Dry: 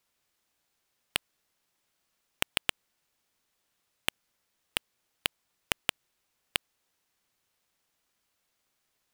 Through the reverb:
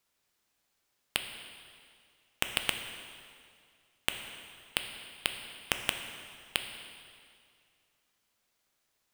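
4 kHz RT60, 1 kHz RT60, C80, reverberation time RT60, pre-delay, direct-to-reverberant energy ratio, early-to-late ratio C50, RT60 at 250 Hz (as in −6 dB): 2.0 s, 2.2 s, 7.5 dB, 2.2 s, 4 ms, 5.0 dB, 7.0 dB, 2.2 s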